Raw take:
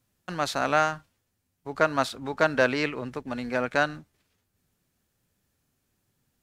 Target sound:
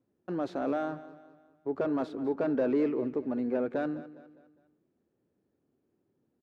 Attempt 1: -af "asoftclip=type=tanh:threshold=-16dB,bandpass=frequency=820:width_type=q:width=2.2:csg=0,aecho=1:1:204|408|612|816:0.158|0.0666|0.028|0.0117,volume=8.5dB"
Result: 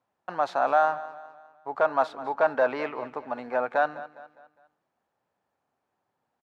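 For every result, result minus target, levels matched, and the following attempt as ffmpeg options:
250 Hz band −15.5 dB; soft clipping: distortion −6 dB
-af "asoftclip=type=tanh:threshold=-16dB,bandpass=frequency=350:width_type=q:width=2.2:csg=0,aecho=1:1:204|408|612|816:0.158|0.0666|0.028|0.0117,volume=8.5dB"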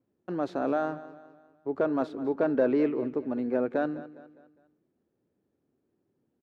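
soft clipping: distortion −6 dB
-af "asoftclip=type=tanh:threshold=-24dB,bandpass=frequency=350:width_type=q:width=2.2:csg=0,aecho=1:1:204|408|612|816:0.158|0.0666|0.028|0.0117,volume=8.5dB"

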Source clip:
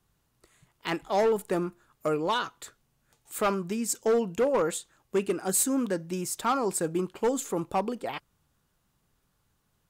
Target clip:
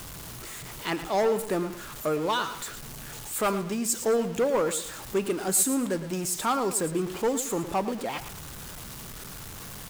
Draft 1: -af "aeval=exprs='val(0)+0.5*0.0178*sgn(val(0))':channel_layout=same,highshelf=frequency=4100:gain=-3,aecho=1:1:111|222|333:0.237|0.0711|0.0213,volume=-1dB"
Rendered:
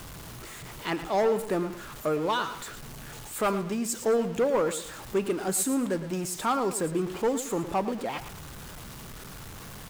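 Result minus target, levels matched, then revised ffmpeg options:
8,000 Hz band −4.0 dB
-af "aeval=exprs='val(0)+0.5*0.0178*sgn(val(0))':channel_layout=same,highshelf=frequency=4100:gain=3,aecho=1:1:111|222|333:0.237|0.0711|0.0213,volume=-1dB"

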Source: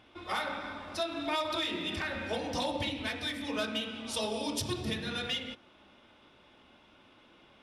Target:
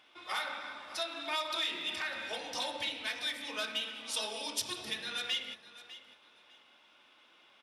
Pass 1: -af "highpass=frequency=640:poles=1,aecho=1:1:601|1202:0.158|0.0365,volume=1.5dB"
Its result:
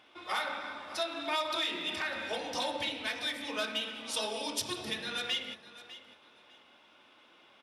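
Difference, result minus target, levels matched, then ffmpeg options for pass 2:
500 Hz band +4.0 dB
-af "highpass=frequency=1500:poles=1,aecho=1:1:601|1202:0.158|0.0365,volume=1.5dB"

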